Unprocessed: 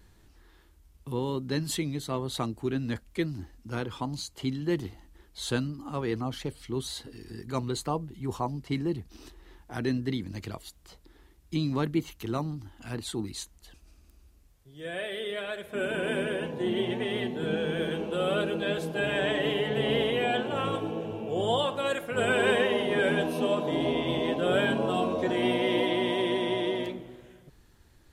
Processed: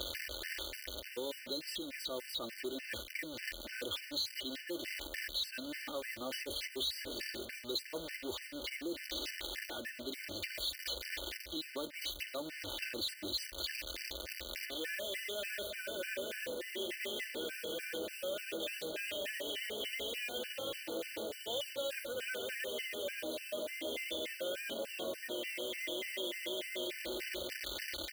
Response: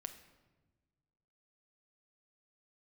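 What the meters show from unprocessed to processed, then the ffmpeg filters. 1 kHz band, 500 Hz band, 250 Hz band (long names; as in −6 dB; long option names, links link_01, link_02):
−18.0 dB, −12.5 dB, −16.0 dB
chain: -filter_complex "[0:a]aeval=exprs='val(0)+0.5*0.0211*sgn(val(0))':channel_layout=same,areverse,acompressor=threshold=-35dB:ratio=8,areverse,equalizer=frequency=125:width_type=o:width=1:gain=-11,equalizer=frequency=250:width_type=o:width=1:gain=-8,equalizer=frequency=500:width_type=o:width=1:gain=10,equalizer=frequency=1000:width_type=o:width=1:gain=-11,equalizer=frequency=2000:width_type=o:width=1:gain=11,equalizer=frequency=4000:width_type=o:width=1:gain=11,equalizer=frequency=8000:width_type=o:width=1:gain=-8,asplit=2[link_01][link_02];[link_02]aeval=exprs='0.0237*(abs(mod(val(0)/0.0237+3,4)-2)-1)':channel_layout=same,volume=-9.5dB[link_03];[link_01][link_03]amix=inputs=2:normalize=0,acrusher=bits=4:mode=log:mix=0:aa=0.000001,highpass=frequency=49:width=0.5412,highpass=frequency=49:width=1.3066,equalizer=frequency=140:width_type=o:width=0.2:gain=-14,aecho=1:1:3.4:0.54,acrossover=split=240|5700[link_04][link_05][link_06];[link_04]acompressor=threshold=-57dB:ratio=4[link_07];[link_05]acompressor=threshold=-41dB:ratio=4[link_08];[link_06]acompressor=threshold=-46dB:ratio=4[link_09];[link_07][link_08][link_09]amix=inputs=3:normalize=0,afftfilt=real='re*gt(sin(2*PI*3.4*pts/sr)*(1-2*mod(floor(b*sr/1024/1500),2)),0)':imag='im*gt(sin(2*PI*3.4*pts/sr)*(1-2*mod(floor(b*sr/1024/1500),2)),0)':win_size=1024:overlap=0.75,volume=3dB"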